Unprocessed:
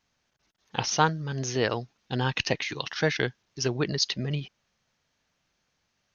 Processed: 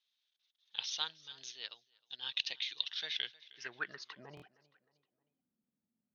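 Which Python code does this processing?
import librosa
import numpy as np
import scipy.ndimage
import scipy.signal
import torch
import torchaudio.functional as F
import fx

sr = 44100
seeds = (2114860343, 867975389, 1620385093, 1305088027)

p1 = fx.filter_sweep_bandpass(x, sr, from_hz=3600.0, to_hz=230.0, start_s=3.1, end_s=5.49, q=6.3)
p2 = p1 + fx.echo_feedback(p1, sr, ms=311, feedback_pct=47, wet_db=-21.5, dry=0)
p3 = fx.buffer_glitch(p2, sr, at_s=(4.35,), block=1024, repeats=2)
p4 = fx.upward_expand(p3, sr, threshold_db=-57.0, expansion=1.5, at=(1.5, 2.22), fade=0.02)
y = p4 * 10.0 ** (3.0 / 20.0)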